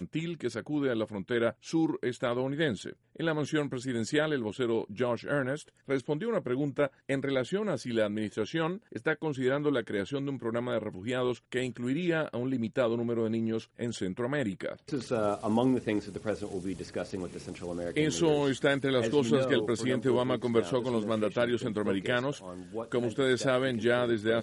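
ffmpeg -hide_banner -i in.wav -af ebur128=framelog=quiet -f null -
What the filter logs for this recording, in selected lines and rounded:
Integrated loudness:
  I:         -30.8 LUFS
  Threshold: -40.9 LUFS
Loudness range:
  LRA:         3.7 LU
  Threshold: -50.9 LUFS
  LRA low:   -32.1 LUFS
  LRA high:  -28.3 LUFS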